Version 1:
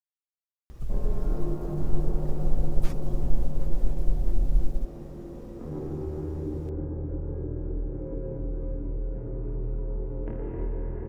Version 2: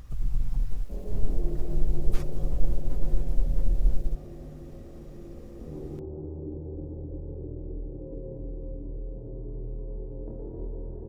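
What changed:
speech: entry −0.70 s
background: add transistor ladder low-pass 900 Hz, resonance 20%

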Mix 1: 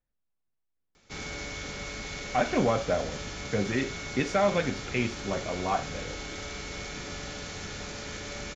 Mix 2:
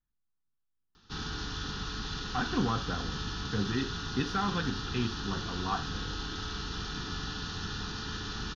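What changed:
background +4.0 dB
master: add phaser with its sweep stopped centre 2,200 Hz, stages 6

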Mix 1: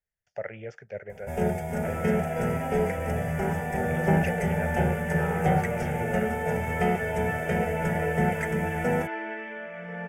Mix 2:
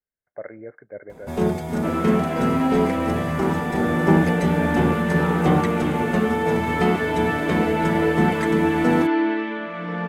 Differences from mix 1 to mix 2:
speech: add Chebyshev low-pass with heavy ripple 2,200 Hz, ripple 9 dB
second sound +5.0 dB
master: remove phaser with its sweep stopped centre 1,100 Hz, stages 6

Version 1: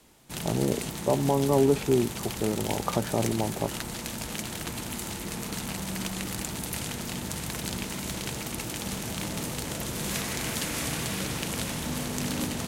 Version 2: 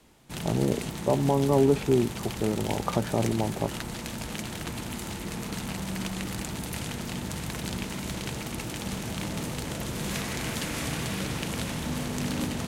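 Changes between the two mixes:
background: add high-shelf EQ 11,000 Hz −4.5 dB
master: add bass and treble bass +2 dB, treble −3 dB

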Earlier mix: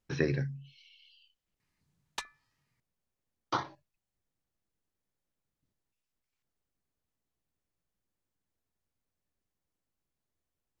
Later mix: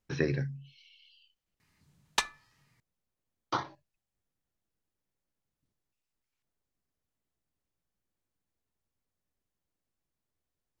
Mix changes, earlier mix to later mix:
background +8.5 dB
reverb: on, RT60 0.35 s

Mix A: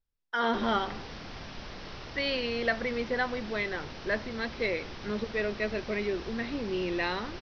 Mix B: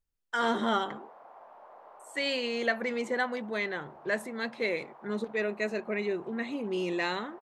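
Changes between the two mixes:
background: add flat-topped band-pass 790 Hz, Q 1.6
master: remove Butterworth low-pass 5,700 Hz 96 dB per octave

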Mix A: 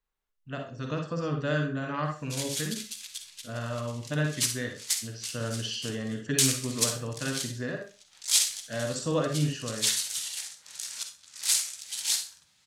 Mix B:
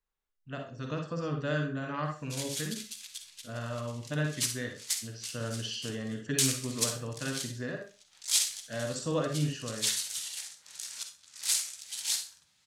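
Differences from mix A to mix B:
speech −3.0 dB
background −3.5 dB

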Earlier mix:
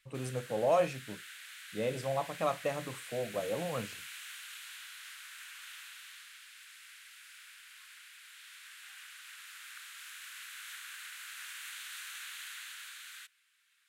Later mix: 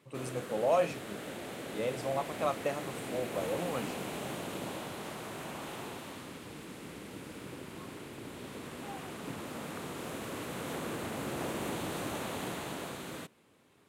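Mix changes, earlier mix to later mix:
background: remove elliptic high-pass filter 1,500 Hz, stop band 80 dB
master: add high-pass filter 140 Hz 12 dB per octave

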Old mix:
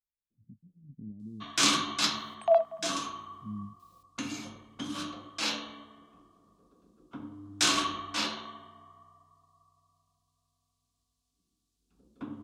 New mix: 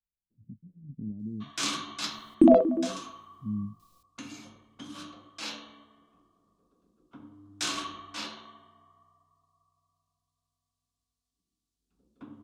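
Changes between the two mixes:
speech +6.5 dB
first sound −6.5 dB
second sound: remove Chebyshev high-pass with heavy ripple 650 Hz, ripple 3 dB

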